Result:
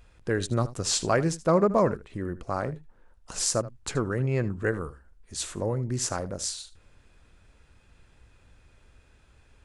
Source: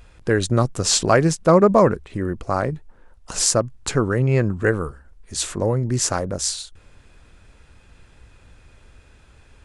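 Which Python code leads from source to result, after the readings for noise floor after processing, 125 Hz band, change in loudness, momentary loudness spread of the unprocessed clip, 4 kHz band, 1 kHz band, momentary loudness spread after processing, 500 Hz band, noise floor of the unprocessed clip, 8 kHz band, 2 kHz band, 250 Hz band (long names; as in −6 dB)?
−60 dBFS, −8.0 dB, −8.0 dB, 12 LU, −8.0 dB, −8.0 dB, 12 LU, −8.0 dB, −52 dBFS, −8.0 dB, −8.0 dB, −8.0 dB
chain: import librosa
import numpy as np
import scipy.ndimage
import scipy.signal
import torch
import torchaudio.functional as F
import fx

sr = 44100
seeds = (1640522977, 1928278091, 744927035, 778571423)

y = x + 10.0 ** (-17.0 / 20.0) * np.pad(x, (int(78 * sr / 1000.0), 0))[:len(x)]
y = y * 10.0 ** (-8.0 / 20.0)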